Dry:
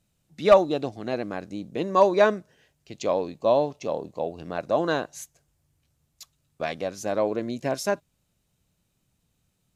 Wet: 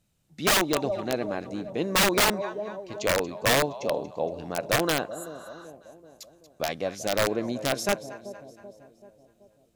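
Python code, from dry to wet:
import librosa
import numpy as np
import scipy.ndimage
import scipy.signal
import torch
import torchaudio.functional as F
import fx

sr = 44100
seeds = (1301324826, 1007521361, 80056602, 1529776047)

y = fx.echo_split(x, sr, split_hz=720.0, low_ms=383, high_ms=233, feedback_pct=52, wet_db=-14)
y = (np.mod(10.0 ** (15.5 / 20.0) * y + 1.0, 2.0) - 1.0) / 10.0 ** (15.5 / 20.0)
y = fx.spec_repair(y, sr, seeds[0], start_s=5.15, length_s=0.47, low_hz=800.0, high_hz=6800.0, source='before')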